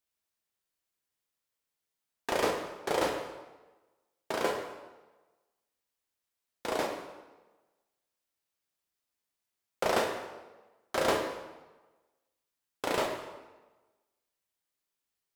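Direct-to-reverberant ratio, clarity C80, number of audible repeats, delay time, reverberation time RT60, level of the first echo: 2.0 dB, 7.0 dB, no echo, no echo, 1.2 s, no echo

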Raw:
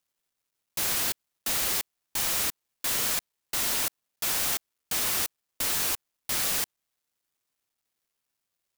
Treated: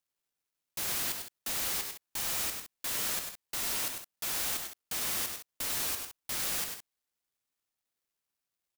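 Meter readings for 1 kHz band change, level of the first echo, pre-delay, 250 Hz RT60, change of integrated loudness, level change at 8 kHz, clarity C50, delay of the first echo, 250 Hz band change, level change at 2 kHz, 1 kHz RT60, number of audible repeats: -5.5 dB, -6.5 dB, no reverb, no reverb, -5.5 dB, -5.5 dB, no reverb, 100 ms, -5.0 dB, -5.5 dB, no reverb, 2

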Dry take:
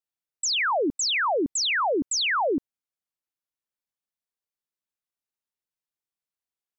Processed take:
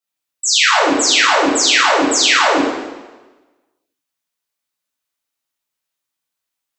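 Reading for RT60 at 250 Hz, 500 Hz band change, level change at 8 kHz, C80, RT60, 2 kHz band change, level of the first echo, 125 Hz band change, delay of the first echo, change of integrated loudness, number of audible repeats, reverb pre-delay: 1.2 s, +9.0 dB, +12.5 dB, 2.0 dB, 1.2 s, +12.5 dB, no echo, +7.5 dB, no echo, +11.5 dB, no echo, 4 ms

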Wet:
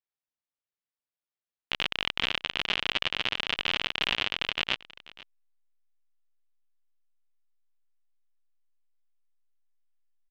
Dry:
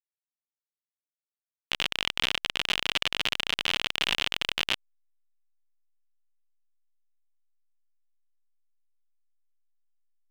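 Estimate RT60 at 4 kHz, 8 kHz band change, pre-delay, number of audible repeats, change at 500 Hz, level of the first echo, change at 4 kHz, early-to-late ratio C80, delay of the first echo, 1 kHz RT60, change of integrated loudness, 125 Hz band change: no reverb, -10.0 dB, no reverb, 1, 0.0 dB, -20.0 dB, -1.5 dB, no reverb, 485 ms, no reverb, -1.0 dB, 0.0 dB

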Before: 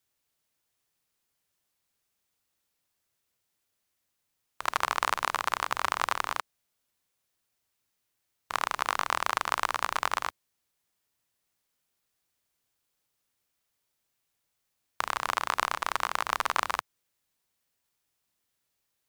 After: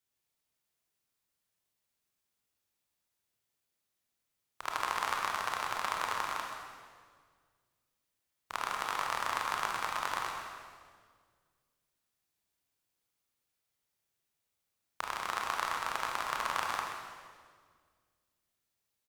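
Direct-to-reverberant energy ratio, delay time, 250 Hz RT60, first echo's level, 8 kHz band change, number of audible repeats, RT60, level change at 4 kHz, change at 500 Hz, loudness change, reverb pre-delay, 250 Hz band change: 0.0 dB, 130 ms, 2.2 s, -9.5 dB, -4.5 dB, 1, 1.8 s, -4.5 dB, -4.5 dB, -5.0 dB, 23 ms, -3.5 dB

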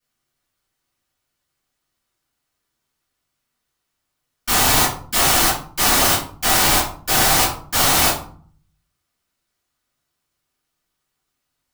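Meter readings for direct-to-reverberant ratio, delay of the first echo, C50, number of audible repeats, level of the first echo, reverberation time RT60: -12.0 dB, no echo, 5.5 dB, no echo, no echo, 0.50 s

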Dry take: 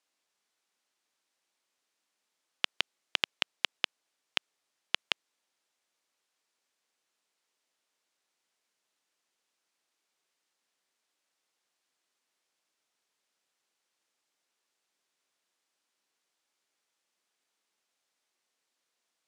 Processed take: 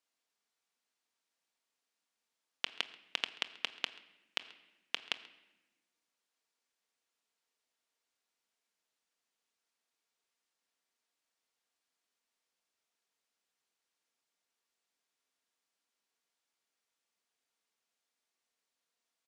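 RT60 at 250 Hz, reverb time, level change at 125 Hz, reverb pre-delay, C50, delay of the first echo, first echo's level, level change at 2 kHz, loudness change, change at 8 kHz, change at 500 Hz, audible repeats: 1.7 s, 1.0 s, no reading, 4 ms, 15.0 dB, 134 ms, -22.5 dB, -5.5 dB, -5.5 dB, -5.5 dB, -5.5 dB, 1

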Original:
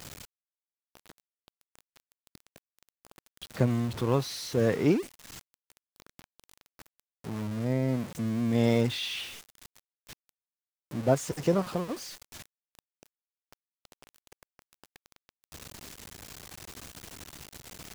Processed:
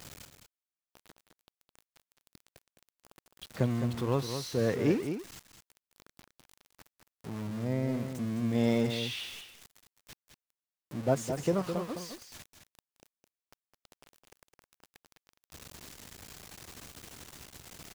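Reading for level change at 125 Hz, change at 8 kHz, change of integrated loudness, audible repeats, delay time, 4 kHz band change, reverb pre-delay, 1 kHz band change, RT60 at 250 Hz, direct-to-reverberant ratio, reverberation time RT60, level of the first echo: -3.0 dB, -3.0 dB, -3.0 dB, 1, 211 ms, -3.0 dB, no reverb, -3.0 dB, no reverb, no reverb, no reverb, -8.0 dB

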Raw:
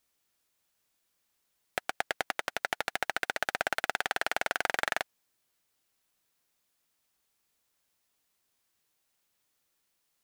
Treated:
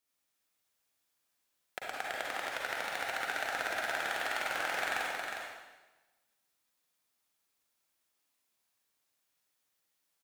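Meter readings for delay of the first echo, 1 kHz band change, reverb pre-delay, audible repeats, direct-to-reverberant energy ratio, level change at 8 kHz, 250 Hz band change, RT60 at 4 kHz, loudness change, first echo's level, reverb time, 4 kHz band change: 361 ms, -2.0 dB, 38 ms, 1, -5.5 dB, -2.5 dB, -3.5 dB, 1.1 s, -2.5 dB, -5.0 dB, 1.2 s, -2.5 dB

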